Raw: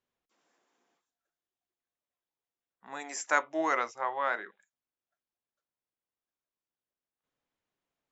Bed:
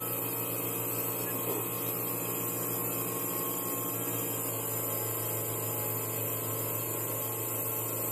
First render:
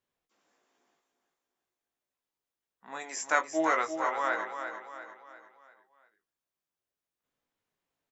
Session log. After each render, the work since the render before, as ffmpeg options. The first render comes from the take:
-filter_complex "[0:a]asplit=2[a][b];[b]adelay=19,volume=-6dB[c];[a][c]amix=inputs=2:normalize=0,aecho=1:1:346|692|1038|1384|1730:0.398|0.179|0.0806|0.0363|0.0163"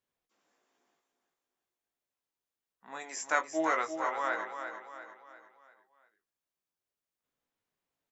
-af "volume=-2.5dB"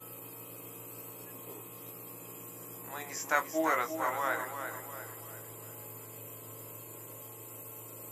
-filter_complex "[1:a]volume=-13.5dB[a];[0:a][a]amix=inputs=2:normalize=0"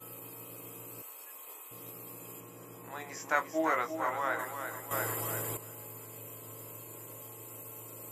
-filter_complex "[0:a]asettb=1/sr,asplit=3[a][b][c];[a]atrim=end=1.024[d];[b]atrim=start=1.02:end=1.71,asetpts=PTS-STARTPTS,afade=t=in:d=0.004:c=qsin,afade=t=out:st=0.686:d=0.004:c=qsin,highpass=790[e];[c]atrim=start=1.706[f];[d][e]acrossfade=d=0.004:c1=hsin:c2=qsin[g];[g][f]acrossfade=d=0.004:c1=qsin:c2=hsin,asettb=1/sr,asplit=3[h][i][j];[h]atrim=end=2.404[k];[i]atrim=start=2.4:end=4.39,asetpts=PTS-STARTPTS,afade=t=in:d=0.004:c=qsin,afade=t=out:st=1.986:d=0.004:c=qsin,highshelf=f=5.5k:g=-9.5[l];[j]atrim=start=4.386[m];[k][l]acrossfade=d=0.004:c1=hsin:c2=qsin[n];[n][m]acrossfade=d=0.004:c1=qsin:c2=hsin,asplit=3[o][p][q];[o]atrim=end=4.912[r];[p]atrim=start=4.908:end=5.572,asetpts=PTS-STARTPTS,volume=10.5dB[s];[q]atrim=start=5.568[t];[r][s]acrossfade=d=0.004:c1=hsin:c2=hsin[u];[u][t]acrossfade=d=0.004:c1=hsin:c2=hsin"

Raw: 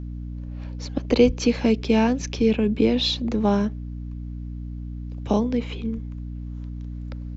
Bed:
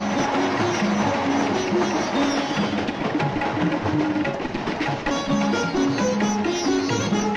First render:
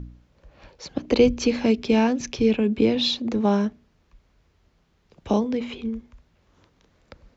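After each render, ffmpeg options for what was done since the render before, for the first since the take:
-af "bandreject=f=60:t=h:w=4,bandreject=f=120:t=h:w=4,bandreject=f=180:t=h:w=4,bandreject=f=240:t=h:w=4,bandreject=f=300:t=h:w=4"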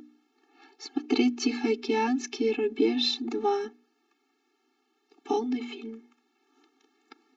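-af "afftfilt=real='re*eq(mod(floor(b*sr/1024/230),2),1)':imag='im*eq(mod(floor(b*sr/1024/230),2),1)':win_size=1024:overlap=0.75"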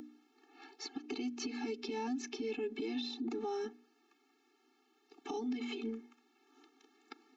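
-filter_complex "[0:a]acrossover=split=920|4200[a][b][c];[a]acompressor=threshold=-30dB:ratio=4[d];[b]acompressor=threshold=-45dB:ratio=4[e];[c]acompressor=threshold=-48dB:ratio=4[f];[d][e][f]amix=inputs=3:normalize=0,alimiter=level_in=6.5dB:limit=-24dB:level=0:latency=1:release=185,volume=-6.5dB"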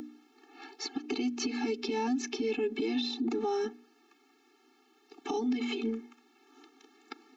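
-af "volume=7dB"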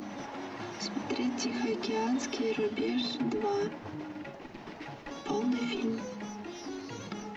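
-filter_complex "[1:a]volume=-19dB[a];[0:a][a]amix=inputs=2:normalize=0"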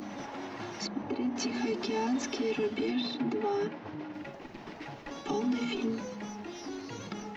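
-filter_complex "[0:a]asettb=1/sr,asplit=3[a][b][c];[a]atrim=end=0.874[d];[b]atrim=start=0.87:end=1.36,asetpts=PTS-STARTPTS,afade=t=in:d=0.004:c=qsin,afade=t=out:st=0.486:d=0.004:c=qsin,lowpass=f=1.1k:p=1[e];[c]atrim=start=1.356[f];[d][e]acrossfade=d=0.004:c1=hsin:c2=qsin[g];[g][f]acrossfade=d=0.004:c1=qsin:c2=hsin,asettb=1/sr,asplit=3[h][i][j];[h]atrim=end=2.914[k];[i]atrim=start=2.91:end=4.14,asetpts=PTS-STARTPTS,afade=t=in:d=0.004:c=qsin,afade=t=out:st=1.226:d=0.004:c=qsin,highpass=110,lowpass=4.6k[l];[j]atrim=start=4.136[m];[k][l]acrossfade=d=0.004:c1=hsin:c2=qsin[n];[n][m]acrossfade=d=0.004:c1=qsin:c2=hsin"

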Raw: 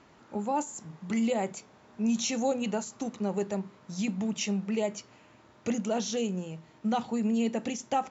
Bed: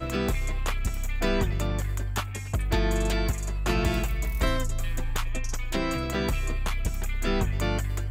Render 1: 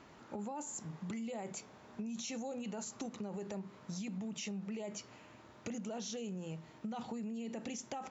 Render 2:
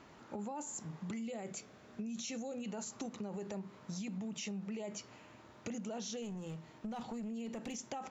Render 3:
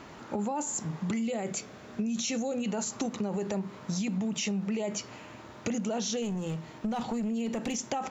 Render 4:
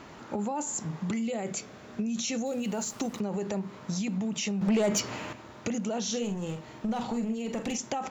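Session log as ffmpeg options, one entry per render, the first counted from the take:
-af "alimiter=level_in=5dB:limit=-24dB:level=0:latency=1:release=38,volume=-5dB,acompressor=threshold=-39dB:ratio=6"
-filter_complex "[0:a]asettb=1/sr,asplit=3[a][b][c];[a]atrim=end=1.224[d];[b]atrim=start=1.22:end=2.68,asetpts=PTS-STARTPTS,afade=t=in:d=0.004:c=qsin,afade=t=out:st=1.456:d=0.004:c=qsin,equalizer=f=910:w=4:g=-9[e];[c]atrim=start=2.676[f];[d][e]acrossfade=d=0.004:c1=hsin:c2=qsin[g];[g][f]acrossfade=d=0.004:c1=qsin:c2=hsin,asettb=1/sr,asplit=3[h][i][j];[h]atrim=end=6.224[k];[i]atrim=start=6.22:end=7.76,asetpts=PTS-STARTPTS,afade=t=in:d=0.004:c=qsin,afade=t=out:st=1.536:d=0.004:c=qsin,aeval=exprs='clip(val(0),-1,0.0106)':c=same[l];[j]atrim=start=7.756[m];[k][l]acrossfade=d=0.004:c1=hsin:c2=qsin[n];[n][m]acrossfade=d=0.004:c1=qsin:c2=hsin"
-af "volume=10.5dB"
-filter_complex "[0:a]asettb=1/sr,asplit=3[a][b][c];[a]atrim=end=2.464[d];[b]atrim=start=2.46:end=3.2,asetpts=PTS-STARTPTS,afade=t=in:d=0.004:c=qsin,afade=t=out:st=0.736:d=0.004:c=qsin,aeval=exprs='val(0)*gte(abs(val(0)),0.00531)':c=same[e];[c]atrim=start=3.196[f];[d][e]acrossfade=d=0.004:c1=hsin:c2=qsin[g];[g][f]acrossfade=d=0.004:c1=qsin:c2=hsin,asettb=1/sr,asplit=3[h][i][j];[h]atrim=end=4.614[k];[i]atrim=start=4.61:end=5.33,asetpts=PTS-STARTPTS,afade=t=in:d=0.004:c=qsin,afade=t=out:st=0.716:d=0.004:c=qsin,aeval=exprs='0.0944*sin(PI/2*1.78*val(0)/0.0944)':c=same[l];[j]atrim=start=5.326[m];[k][l]acrossfade=d=0.004:c1=hsin:c2=qsin[n];[n][m]acrossfade=d=0.004:c1=qsin:c2=hsin,asettb=1/sr,asplit=3[o][p][q];[o]atrim=end=6.034[r];[p]atrim=start=6.03:end=7.78,asetpts=PTS-STARTPTS,afade=t=in:d=0.004:c=qsin,afade=t=out:st=1.746:d=0.004:c=qsin,asplit=2[s][t];[t]adelay=46,volume=-8dB[u];[s][u]amix=inputs=2:normalize=0,atrim=end_sample=77175[v];[q]atrim=start=7.776[w];[r][v]acrossfade=d=0.004:c1=hsin:c2=qsin[x];[x][w]acrossfade=d=0.004:c1=qsin:c2=hsin"

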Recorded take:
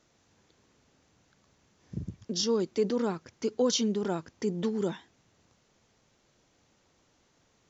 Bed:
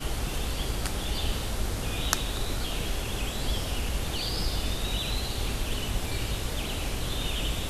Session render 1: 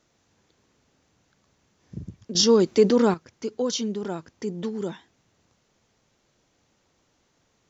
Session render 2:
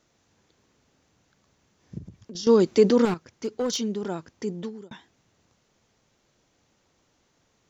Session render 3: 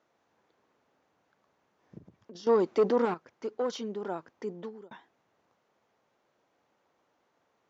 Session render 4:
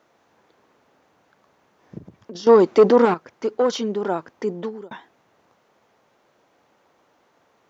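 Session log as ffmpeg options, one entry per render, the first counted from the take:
-filter_complex "[0:a]asplit=3[a][b][c];[a]atrim=end=2.352[d];[b]atrim=start=2.348:end=3.142,asetpts=PTS-STARTPTS,volume=10dB[e];[c]atrim=start=3.138[f];[d][e]acrossfade=d=0.004:c1=hsin:c2=hsin[g];[g][f]acrossfade=d=0.004:c1=hsin:c2=hsin"
-filter_complex "[0:a]asettb=1/sr,asplit=3[a][b][c];[a]atrim=end=1.984[d];[b]atrim=start=1.98:end=2.47,asetpts=PTS-STARTPTS,afade=t=in:d=0.004:c=qsin,afade=t=out:st=0.486:d=0.004:c=qsin,acompressor=threshold=-40dB:ratio=2.5:attack=3.2:release=140:knee=1:detection=peak[e];[c]atrim=start=2.466[f];[d][e]acrossfade=d=0.004:c1=hsin:c2=qsin[g];[g][f]acrossfade=d=0.004:c1=qsin:c2=hsin,asettb=1/sr,asplit=3[h][i][j];[h]atrim=end=3.054[k];[i]atrim=start=3.05:end=3.82,asetpts=PTS-STARTPTS,afade=t=in:d=0.004:c=qsin,afade=t=out:st=0.766:d=0.004:c=qsin,asoftclip=type=hard:threshold=-21.5dB[l];[j]atrim=start=3.816[m];[k][l]acrossfade=d=0.004:c1=hsin:c2=qsin[n];[n][m]acrossfade=d=0.004:c1=qsin:c2=hsin,asplit=2[o][p];[o]atrim=end=4.91,asetpts=PTS-STARTPTS,afade=t=out:st=4.51:d=0.4[q];[p]atrim=start=4.91,asetpts=PTS-STARTPTS,afade=t=in:d=0.004:c=hsin[r];[q][r]concat=n=2:v=0:a=1"
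-af "asoftclip=type=tanh:threshold=-12.5dB,bandpass=f=840:t=q:w=0.8:csg=0"
-af "volume=11.5dB"

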